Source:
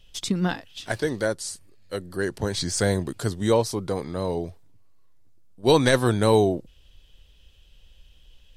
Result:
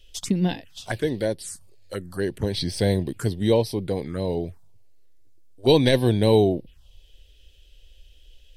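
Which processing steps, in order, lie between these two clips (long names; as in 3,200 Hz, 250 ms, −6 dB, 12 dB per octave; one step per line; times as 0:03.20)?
phaser swept by the level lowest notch 150 Hz, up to 1,300 Hz, full sweep at −24.5 dBFS
level +2.5 dB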